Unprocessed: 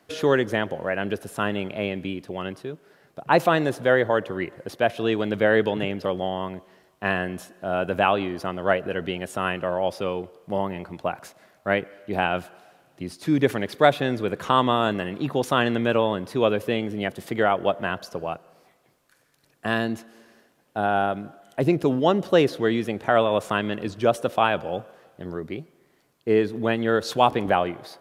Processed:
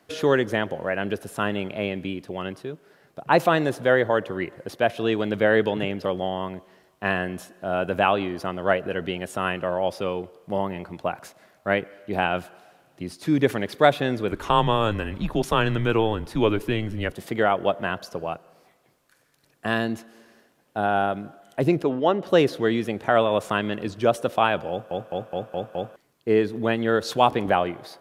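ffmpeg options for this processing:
-filter_complex "[0:a]asettb=1/sr,asplit=3[a][b][c];[a]atrim=end=14.314[d];[b]atrim=start=14.31:end=17.14,asetpts=PTS-STARTPTS,afade=t=in:d=0.004:c=qsin,afade=t=out:st=2.826:d=0.004:c=qsin,afreqshift=-110[e];[c]atrim=start=17.136[f];[d][e]acrossfade=d=0.004:c1=hsin:c2=qsin[g];[g][f]acrossfade=d=0.004:c1=qsin:c2=hsin,asettb=1/sr,asplit=3[h][i][j];[h]atrim=end=21.824[k];[i]atrim=start=21.82:end=22.27,asetpts=PTS-STARTPTS,afade=t=in:d=0.004:c=qsin,afade=t=out:st=0.446:d=0.004:c=qsin,bass=f=250:g=-8,treble=f=4k:g=-12[l];[j]atrim=start=22.266[m];[k][l]acrossfade=d=0.004:c1=hsin:c2=qsin[n];[n][m]acrossfade=d=0.004:c1=qsin:c2=hsin,asplit=7[o][p][q][r][s][t][u];[o]atrim=end=24.912[v];[p]atrim=start=24.698:end=24.912[w];[q]atrim=start=24.698:end=24.912[x];[r]atrim=start=24.698:end=24.912[y];[s]atrim=start=24.698:end=24.912[z];[t]atrim=start=24.698:end=24.912[aa];[u]atrim=start=25.958[ab];[v][w]acrossfade=d=0.004:c1=hsin:c2=hsin[ac];[ac][x]acrossfade=d=0.004:c1=hsin:c2=hsin[ad];[ad][y]acrossfade=d=0.004:c1=hsin:c2=hsin[ae];[ae][z]acrossfade=d=0.004:c1=hsin:c2=hsin[af];[af][aa]acrossfade=d=0.004:c1=hsin:c2=hsin[ag];[ag][ab]acrossfade=d=0.004:c1=hsin:c2=hsin"

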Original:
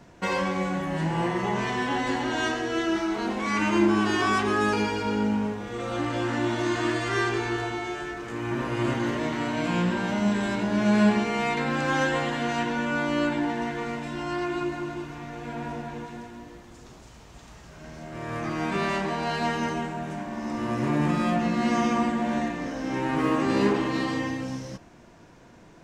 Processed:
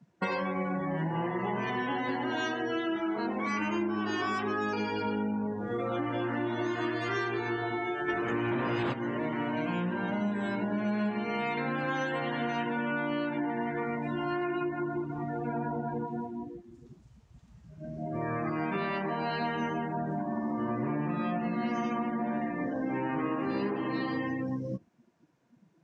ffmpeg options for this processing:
-filter_complex "[0:a]asplit=3[a][b][c];[a]afade=t=out:st=8.08:d=0.02[d];[b]aeval=exprs='0.178*sin(PI/2*2.51*val(0)/0.178)':c=same,afade=t=in:st=8.08:d=0.02,afade=t=out:st=8.92:d=0.02[e];[c]afade=t=in:st=8.92:d=0.02[f];[d][e][f]amix=inputs=3:normalize=0,afftdn=nr=27:nf=-35,highpass=110,acompressor=threshold=-36dB:ratio=6,volume=6.5dB"

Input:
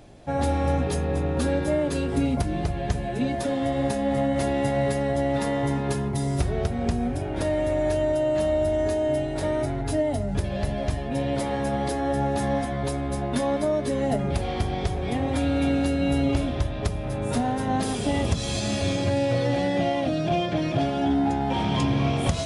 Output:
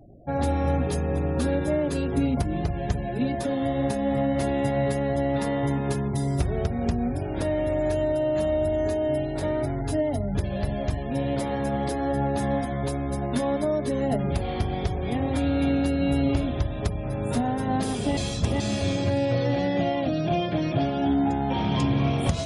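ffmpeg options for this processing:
-filter_complex "[0:a]asplit=3[a][b][c];[a]atrim=end=18.172[d];[b]atrim=start=18.168:end=18.602,asetpts=PTS-STARTPTS,areverse[e];[c]atrim=start=18.598[f];[d][e]acrossfade=d=0.004:c1=hsin:c2=hsin[g];[g][f]acrossfade=d=0.004:c1=hsin:c2=hsin,afftfilt=real='re*gte(hypot(re,im),0.00794)':imag='im*gte(hypot(re,im),0.00794)':win_size=1024:overlap=0.75,equalizer=f=160:w=0.42:g=2.5,volume=-2dB"

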